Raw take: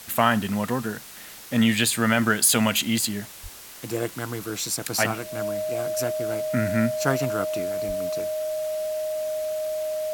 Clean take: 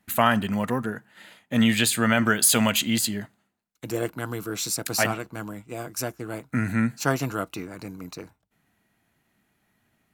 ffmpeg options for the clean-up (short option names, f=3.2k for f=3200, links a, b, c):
-filter_complex "[0:a]bandreject=f=620:w=30,asplit=3[a][b][c];[a]afade=t=out:st=3.42:d=0.02[d];[b]highpass=f=140:w=0.5412,highpass=f=140:w=1.3066,afade=t=in:st=3.42:d=0.02,afade=t=out:st=3.54:d=0.02[e];[c]afade=t=in:st=3.54:d=0.02[f];[d][e][f]amix=inputs=3:normalize=0,asplit=3[g][h][i];[g]afade=t=out:st=7.87:d=0.02[j];[h]highpass=f=140:w=0.5412,highpass=f=140:w=1.3066,afade=t=in:st=7.87:d=0.02,afade=t=out:st=7.99:d=0.02[k];[i]afade=t=in:st=7.99:d=0.02[l];[j][k][l]amix=inputs=3:normalize=0,afftdn=nr=29:nf=-42"